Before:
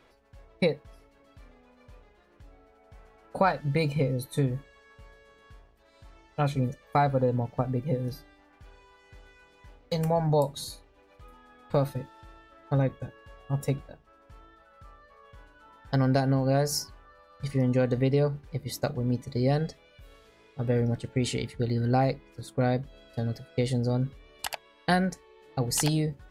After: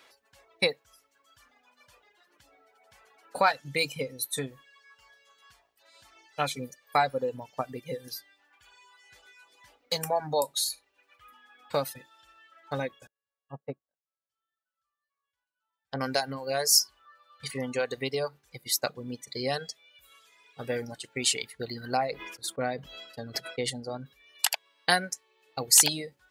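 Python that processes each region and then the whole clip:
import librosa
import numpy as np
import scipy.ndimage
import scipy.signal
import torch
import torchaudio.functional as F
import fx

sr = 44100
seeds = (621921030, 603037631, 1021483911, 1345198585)

y = fx.chain(x, sr, fx.env_lowpass_down(base_hz=990.0, full_db=-28.0),
    fx.upward_expand(threshold_db=-44.0, expansion=2.5), at=(13.07, 16.01))
y = fx.chain(y, sr, fx.high_shelf(hz=2600.0, db=-10.5),
    fx.sustainer(db_per_s=56.0), at=(21.97, 24.06))
y = fx.dereverb_blind(y, sr, rt60_s=1.9)
y = fx.highpass(y, sr, hz=850.0, slope=6)
y = fx.high_shelf(y, sr, hz=2700.0, db=9.0)
y = y * 10.0 ** (3.0 / 20.0)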